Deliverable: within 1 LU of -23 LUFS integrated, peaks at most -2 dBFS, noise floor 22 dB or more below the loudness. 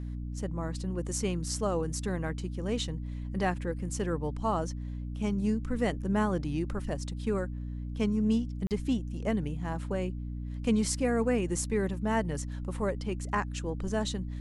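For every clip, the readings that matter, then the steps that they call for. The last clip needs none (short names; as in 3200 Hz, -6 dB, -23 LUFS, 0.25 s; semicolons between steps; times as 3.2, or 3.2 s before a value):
dropouts 1; longest dropout 38 ms; hum 60 Hz; harmonics up to 300 Hz; hum level -34 dBFS; loudness -32.0 LUFS; peak -15.0 dBFS; loudness target -23.0 LUFS
-> interpolate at 8.67, 38 ms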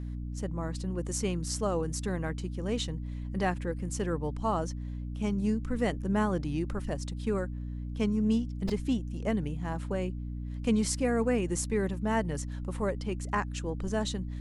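dropouts 0; hum 60 Hz; harmonics up to 300 Hz; hum level -34 dBFS
-> notches 60/120/180/240/300 Hz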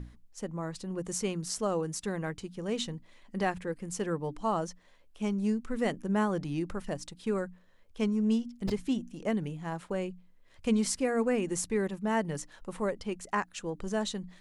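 hum none; loudness -33.0 LUFS; peak -16.5 dBFS; loudness target -23.0 LUFS
-> gain +10 dB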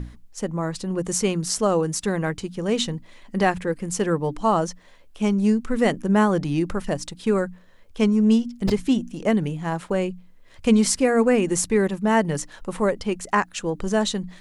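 loudness -23.0 LUFS; peak -6.5 dBFS; noise floor -49 dBFS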